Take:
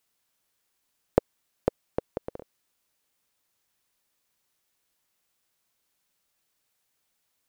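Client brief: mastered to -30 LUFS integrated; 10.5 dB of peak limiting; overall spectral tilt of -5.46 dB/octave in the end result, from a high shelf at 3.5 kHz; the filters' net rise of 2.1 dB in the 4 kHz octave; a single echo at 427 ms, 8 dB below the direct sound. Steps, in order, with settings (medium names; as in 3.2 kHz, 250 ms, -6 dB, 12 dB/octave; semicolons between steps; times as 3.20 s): treble shelf 3.5 kHz -8 dB; peaking EQ 4 kHz +8 dB; peak limiter -13 dBFS; delay 427 ms -8 dB; trim +11 dB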